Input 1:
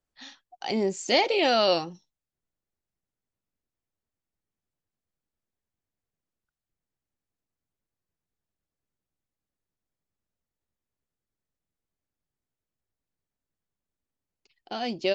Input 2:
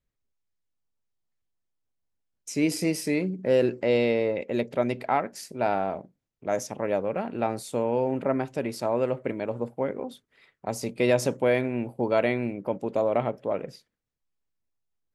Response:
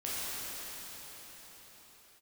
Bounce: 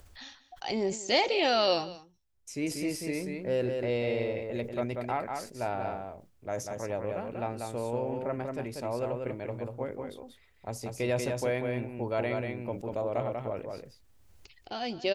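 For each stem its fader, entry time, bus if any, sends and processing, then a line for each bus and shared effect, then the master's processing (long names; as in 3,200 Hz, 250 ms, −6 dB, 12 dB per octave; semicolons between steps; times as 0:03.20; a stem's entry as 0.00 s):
−3.0 dB, 0.00 s, no send, echo send −18 dB, upward compression, threshold −39 dBFS; automatic ducking −12 dB, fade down 0.30 s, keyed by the second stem
−7.5 dB, 0.00 s, no send, echo send −4.5 dB, no processing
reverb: not used
echo: single-tap delay 190 ms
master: low shelf with overshoot 120 Hz +9.5 dB, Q 1.5; level that may fall only so fast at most 120 dB per second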